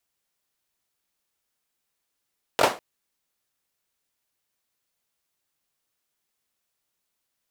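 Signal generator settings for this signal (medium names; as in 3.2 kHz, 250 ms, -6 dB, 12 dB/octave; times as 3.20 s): hand clap length 0.20 s, bursts 3, apart 21 ms, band 620 Hz, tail 0.29 s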